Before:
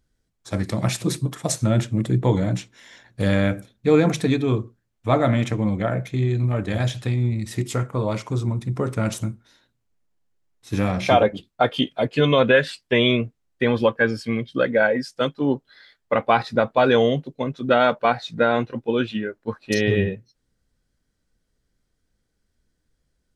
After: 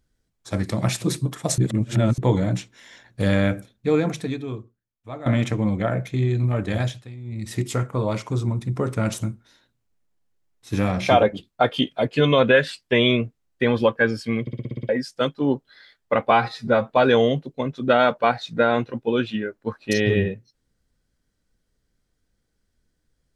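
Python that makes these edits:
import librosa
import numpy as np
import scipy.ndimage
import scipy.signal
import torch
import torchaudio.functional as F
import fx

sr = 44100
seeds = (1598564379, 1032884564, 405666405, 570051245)

y = fx.edit(x, sr, fx.reverse_span(start_s=1.58, length_s=0.6),
    fx.fade_out_to(start_s=3.56, length_s=1.7, curve='qua', floor_db=-16.5),
    fx.fade_down_up(start_s=6.79, length_s=0.71, db=-15.5, fade_s=0.25),
    fx.stutter_over(start_s=14.41, slice_s=0.06, count=8),
    fx.stretch_span(start_s=16.31, length_s=0.38, factor=1.5), tone=tone)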